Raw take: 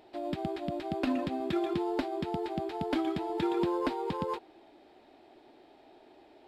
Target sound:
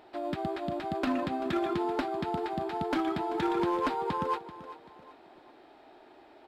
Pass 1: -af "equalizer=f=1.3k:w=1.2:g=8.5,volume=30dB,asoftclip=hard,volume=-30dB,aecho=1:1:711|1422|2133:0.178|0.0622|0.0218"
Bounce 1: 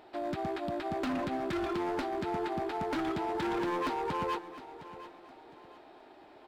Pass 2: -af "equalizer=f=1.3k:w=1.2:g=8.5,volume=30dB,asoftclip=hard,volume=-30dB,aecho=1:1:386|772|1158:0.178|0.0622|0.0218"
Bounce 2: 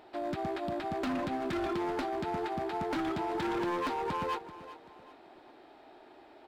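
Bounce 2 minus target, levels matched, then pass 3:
overloaded stage: distortion +11 dB
-af "equalizer=f=1.3k:w=1.2:g=8.5,volume=23dB,asoftclip=hard,volume=-23dB,aecho=1:1:386|772|1158:0.178|0.0622|0.0218"

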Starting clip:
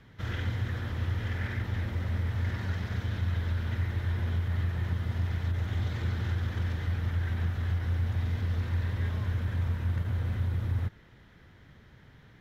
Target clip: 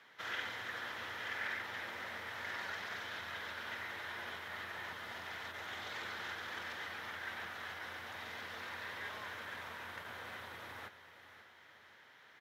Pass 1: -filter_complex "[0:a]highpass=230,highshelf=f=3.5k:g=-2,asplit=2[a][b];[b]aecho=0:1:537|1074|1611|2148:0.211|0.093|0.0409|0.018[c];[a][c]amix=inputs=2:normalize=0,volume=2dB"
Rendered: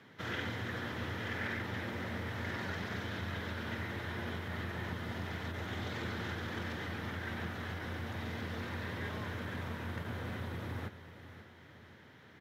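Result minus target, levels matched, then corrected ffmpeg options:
250 Hz band +13.5 dB
-filter_complex "[0:a]highpass=760,highshelf=f=3.5k:g=-2,asplit=2[a][b];[b]aecho=0:1:537|1074|1611|2148:0.211|0.093|0.0409|0.018[c];[a][c]amix=inputs=2:normalize=0,volume=2dB"

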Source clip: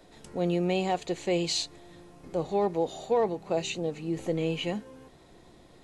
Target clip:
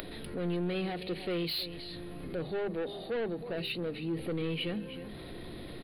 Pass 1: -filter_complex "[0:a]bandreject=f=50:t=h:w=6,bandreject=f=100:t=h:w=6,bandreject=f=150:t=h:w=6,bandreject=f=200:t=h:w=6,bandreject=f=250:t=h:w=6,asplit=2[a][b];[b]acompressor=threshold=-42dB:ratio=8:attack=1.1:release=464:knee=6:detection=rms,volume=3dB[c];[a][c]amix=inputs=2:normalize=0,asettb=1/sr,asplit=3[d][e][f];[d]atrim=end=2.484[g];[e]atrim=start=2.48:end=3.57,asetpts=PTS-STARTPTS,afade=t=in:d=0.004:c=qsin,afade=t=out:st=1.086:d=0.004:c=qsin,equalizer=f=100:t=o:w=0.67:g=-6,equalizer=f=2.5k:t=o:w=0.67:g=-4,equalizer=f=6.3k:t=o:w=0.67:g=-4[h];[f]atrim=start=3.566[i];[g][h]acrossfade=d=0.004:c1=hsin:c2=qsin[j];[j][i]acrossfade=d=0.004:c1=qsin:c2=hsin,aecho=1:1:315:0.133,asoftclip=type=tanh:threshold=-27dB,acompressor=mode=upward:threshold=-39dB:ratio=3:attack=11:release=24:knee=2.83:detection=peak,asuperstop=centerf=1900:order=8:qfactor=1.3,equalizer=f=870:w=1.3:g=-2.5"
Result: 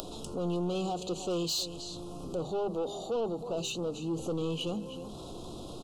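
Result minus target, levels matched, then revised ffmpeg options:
8000 Hz band +15.5 dB; 1000 Hz band +4.0 dB
-filter_complex "[0:a]bandreject=f=50:t=h:w=6,bandreject=f=100:t=h:w=6,bandreject=f=150:t=h:w=6,bandreject=f=200:t=h:w=6,bandreject=f=250:t=h:w=6,asplit=2[a][b];[b]acompressor=threshold=-42dB:ratio=8:attack=1.1:release=464:knee=6:detection=rms,volume=3dB[c];[a][c]amix=inputs=2:normalize=0,asettb=1/sr,asplit=3[d][e][f];[d]atrim=end=2.484[g];[e]atrim=start=2.48:end=3.57,asetpts=PTS-STARTPTS,afade=t=in:d=0.004:c=qsin,afade=t=out:st=1.086:d=0.004:c=qsin,equalizer=f=100:t=o:w=0.67:g=-6,equalizer=f=2.5k:t=o:w=0.67:g=-4,equalizer=f=6.3k:t=o:w=0.67:g=-4[h];[f]atrim=start=3.566[i];[g][h]acrossfade=d=0.004:c1=hsin:c2=qsin[j];[j][i]acrossfade=d=0.004:c1=qsin:c2=hsin,aecho=1:1:315:0.133,asoftclip=type=tanh:threshold=-27dB,acompressor=mode=upward:threshold=-39dB:ratio=3:attack=11:release=24:knee=2.83:detection=peak,asuperstop=centerf=6700:order=8:qfactor=1.3,equalizer=f=870:w=1.3:g=-9.5"

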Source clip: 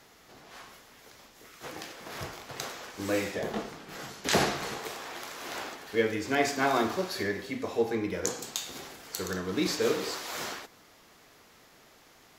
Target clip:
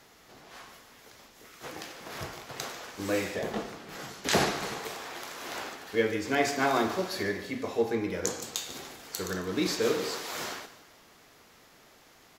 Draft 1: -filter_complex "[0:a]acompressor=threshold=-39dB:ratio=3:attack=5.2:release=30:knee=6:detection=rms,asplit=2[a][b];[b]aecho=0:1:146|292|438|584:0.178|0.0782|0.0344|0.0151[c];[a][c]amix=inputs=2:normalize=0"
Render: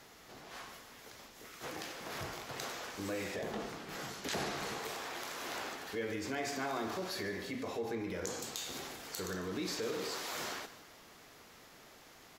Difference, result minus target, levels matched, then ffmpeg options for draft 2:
compressor: peak gain reduction +14.5 dB
-filter_complex "[0:a]asplit=2[a][b];[b]aecho=0:1:146|292|438|584:0.178|0.0782|0.0344|0.0151[c];[a][c]amix=inputs=2:normalize=0"

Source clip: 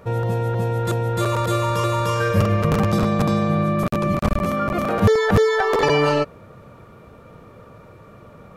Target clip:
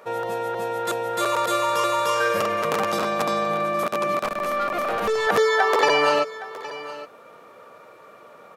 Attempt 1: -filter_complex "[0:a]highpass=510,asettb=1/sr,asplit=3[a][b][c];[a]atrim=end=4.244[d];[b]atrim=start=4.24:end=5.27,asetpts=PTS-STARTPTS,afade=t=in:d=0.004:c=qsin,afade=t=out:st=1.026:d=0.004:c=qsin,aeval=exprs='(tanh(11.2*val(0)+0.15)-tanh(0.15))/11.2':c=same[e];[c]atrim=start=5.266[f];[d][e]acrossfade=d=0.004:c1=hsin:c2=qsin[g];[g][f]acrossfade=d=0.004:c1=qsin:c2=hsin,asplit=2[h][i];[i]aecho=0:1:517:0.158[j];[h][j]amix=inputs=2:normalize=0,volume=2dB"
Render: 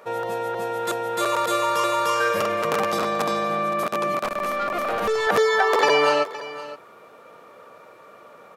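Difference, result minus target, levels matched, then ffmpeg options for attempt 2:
echo 0.299 s early
-filter_complex "[0:a]highpass=510,asettb=1/sr,asplit=3[a][b][c];[a]atrim=end=4.244[d];[b]atrim=start=4.24:end=5.27,asetpts=PTS-STARTPTS,afade=t=in:d=0.004:c=qsin,afade=t=out:st=1.026:d=0.004:c=qsin,aeval=exprs='(tanh(11.2*val(0)+0.15)-tanh(0.15))/11.2':c=same[e];[c]atrim=start=5.266[f];[d][e]acrossfade=d=0.004:c1=hsin:c2=qsin[g];[g][f]acrossfade=d=0.004:c1=qsin:c2=hsin,asplit=2[h][i];[i]aecho=0:1:816:0.158[j];[h][j]amix=inputs=2:normalize=0,volume=2dB"

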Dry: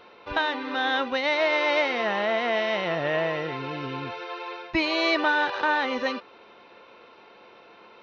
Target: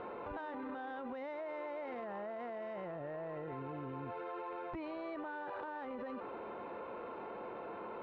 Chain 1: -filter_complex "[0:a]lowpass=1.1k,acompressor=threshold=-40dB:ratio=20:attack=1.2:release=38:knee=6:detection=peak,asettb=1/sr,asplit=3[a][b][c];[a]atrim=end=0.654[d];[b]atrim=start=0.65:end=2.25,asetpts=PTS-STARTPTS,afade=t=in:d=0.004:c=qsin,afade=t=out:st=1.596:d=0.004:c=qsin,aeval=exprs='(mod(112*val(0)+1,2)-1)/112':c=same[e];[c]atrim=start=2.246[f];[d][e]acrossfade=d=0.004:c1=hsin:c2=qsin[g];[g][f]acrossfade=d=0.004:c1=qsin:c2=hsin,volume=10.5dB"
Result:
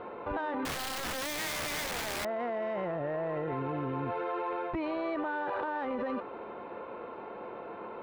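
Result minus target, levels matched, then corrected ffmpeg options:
compressor: peak gain reduction -9.5 dB
-filter_complex "[0:a]lowpass=1.1k,acompressor=threshold=-50dB:ratio=20:attack=1.2:release=38:knee=6:detection=peak,asettb=1/sr,asplit=3[a][b][c];[a]atrim=end=0.654[d];[b]atrim=start=0.65:end=2.25,asetpts=PTS-STARTPTS,afade=t=in:d=0.004:c=qsin,afade=t=out:st=1.596:d=0.004:c=qsin,aeval=exprs='(mod(112*val(0)+1,2)-1)/112':c=same[e];[c]atrim=start=2.246[f];[d][e]acrossfade=d=0.004:c1=hsin:c2=qsin[g];[g][f]acrossfade=d=0.004:c1=qsin:c2=hsin,volume=10.5dB"

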